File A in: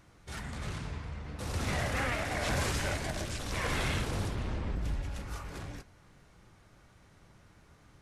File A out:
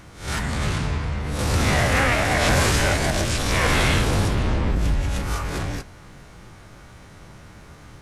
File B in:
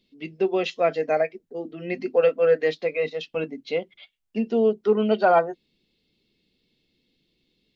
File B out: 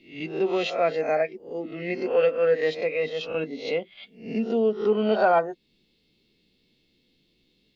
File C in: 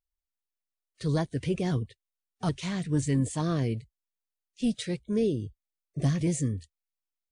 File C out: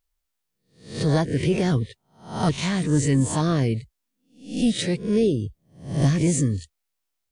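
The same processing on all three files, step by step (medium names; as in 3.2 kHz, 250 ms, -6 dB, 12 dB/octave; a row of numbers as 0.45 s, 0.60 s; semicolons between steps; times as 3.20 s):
reverse spectral sustain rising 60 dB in 0.44 s; in parallel at -1 dB: compression, threshold -33 dBFS; on the sum: peak normalisation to -9 dBFS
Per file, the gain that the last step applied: +8.0 dB, -4.0 dB, +3.5 dB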